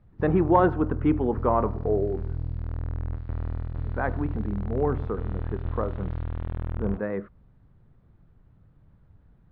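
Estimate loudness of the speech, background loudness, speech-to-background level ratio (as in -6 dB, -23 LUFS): -27.0 LUFS, -33.5 LUFS, 6.5 dB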